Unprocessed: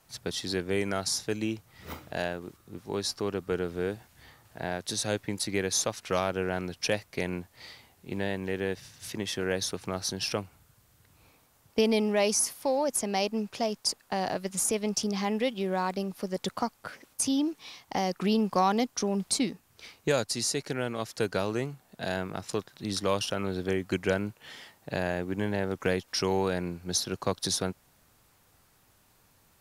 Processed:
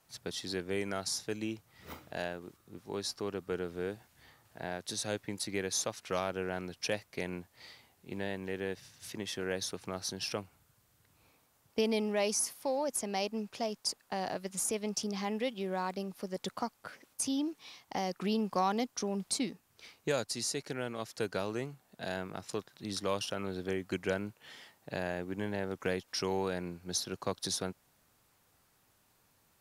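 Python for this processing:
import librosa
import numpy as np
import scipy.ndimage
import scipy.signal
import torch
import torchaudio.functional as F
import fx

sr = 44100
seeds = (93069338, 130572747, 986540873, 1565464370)

y = fx.low_shelf(x, sr, hz=78.0, db=-7.0)
y = F.gain(torch.from_numpy(y), -5.5).numpy()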